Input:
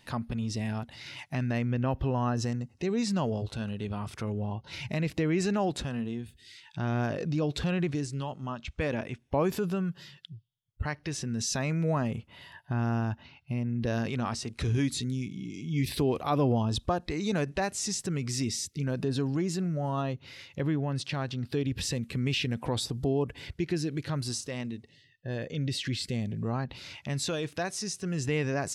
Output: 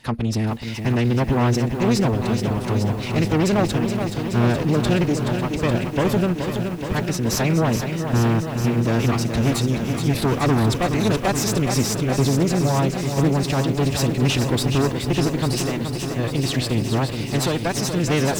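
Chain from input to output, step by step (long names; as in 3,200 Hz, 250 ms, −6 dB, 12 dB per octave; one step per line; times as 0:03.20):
harmonic generator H 2 −25 dB, 5 −15 dB, 6 −10 dB, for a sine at −14.5 dBFS
phase-vocoder stretch with locked phases 0.64×
feedback echo at a low word length 424 ms, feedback 80%, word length 8 bits, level −7 dB
level +3.5 dB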